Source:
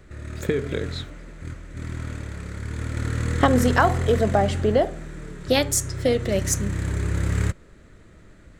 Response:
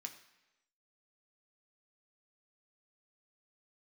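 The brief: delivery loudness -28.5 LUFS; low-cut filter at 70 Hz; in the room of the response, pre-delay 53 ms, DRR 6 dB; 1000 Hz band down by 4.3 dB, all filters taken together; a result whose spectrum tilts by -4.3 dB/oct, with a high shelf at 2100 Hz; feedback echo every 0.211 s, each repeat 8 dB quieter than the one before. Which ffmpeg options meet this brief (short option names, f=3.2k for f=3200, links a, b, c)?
-filter_complex "[0:a]highpass=70,equalizer=f=1k:t=o:g=-7,highshelf=f=2.1k:g=3.5,aecho=1:1:211|422|633|844|1055:0.398|0.159|0.0637|0.0255|0.0102,asplit=2[a][b];[1:a]atrim=start_sample=2205,adelay=53[c];[b][c]afir=irnorm=-1:irlink=0,volume=-2dB[d];[a][d]amix=inputs=2:normalize=0,volume=-6dB"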